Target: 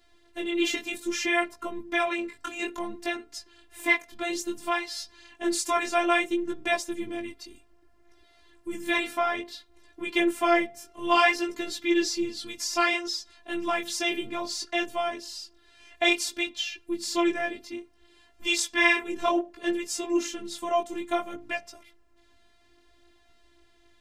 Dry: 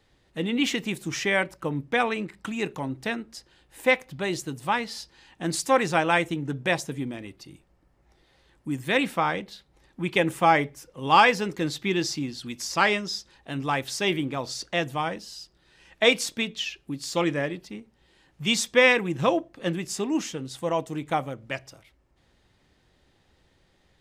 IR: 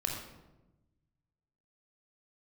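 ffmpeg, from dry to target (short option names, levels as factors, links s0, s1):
-filter_complex "[0:a]bandreject=f=273.5:t=h:w=4,bandreject=f=547:t=h:w=4,bandreject=f=820.5:t=h:w=4,bandreject=f=1094:t=h:w=4,asplit=2[s0][s1];[s1]acompressor=threshold=0.0224:ratio=5,volume=0.75[s2];[s0][s2]amix=inputs=2:normalize=0,afftfilt=real='hypot(re,im)*cos(PI*b)':imag='0':win_size=512:overlap=0.75,flanger=delay=16:depth=6:speed=0.6,volume=1.58"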